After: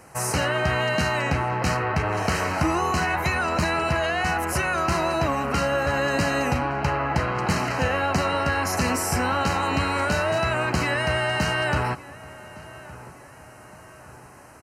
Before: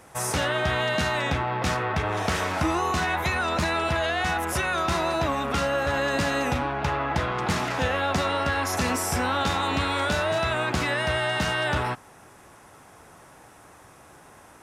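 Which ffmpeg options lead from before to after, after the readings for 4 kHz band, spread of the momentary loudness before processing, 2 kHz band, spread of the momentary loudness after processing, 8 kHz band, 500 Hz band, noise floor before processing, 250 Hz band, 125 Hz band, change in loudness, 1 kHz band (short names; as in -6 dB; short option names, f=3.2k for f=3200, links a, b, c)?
-1.0 dB, 2 LU, +1.5 dB, 3 LU, +1.5 dB, +1.5 dB, -51 dBFS, +2.5 dB, +3.5 dB, +1.5 dB, +1.5 dB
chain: -filter_complex "[0:a]asuperstop=centerf=3500:order=8:qfactor=5,equalizer=f=140:t=o:w=0.77:g=3,asplit=2[a][b];[b]adelay=1164,lowpass=f=2.7k:p=1,volume=-19dB,asplit=2[c][d];[d]adelay=1164,lowpass=f=2.7k:p=1,volume=0.51,asplit=2[e][f];[f]adelay=1164,lowpass=f=2.7k:p=1,volume=0.51,asplit=2[g][h];[h]adelay=1164,lowpass=f=2.7k:p=1,volume=0.51[i];[a][c][e][g][i]amix=inputs=5:normalize=0,volume=1.5dB"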